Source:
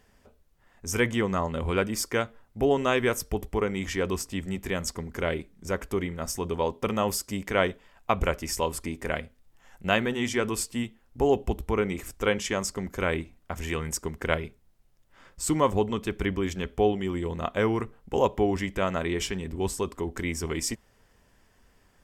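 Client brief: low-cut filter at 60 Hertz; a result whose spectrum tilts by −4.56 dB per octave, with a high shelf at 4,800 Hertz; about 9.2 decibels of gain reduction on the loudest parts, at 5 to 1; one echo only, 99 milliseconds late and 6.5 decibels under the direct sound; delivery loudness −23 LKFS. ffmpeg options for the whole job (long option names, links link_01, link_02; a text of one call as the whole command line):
ffmpeg -i in.wav -af "highpass=60,highshelf=frequency=4800:gain=-3.5,acompressor=threshold=-28dB:ratio=5,aecho=1:1:99:0.473,volume=10dB" out.wav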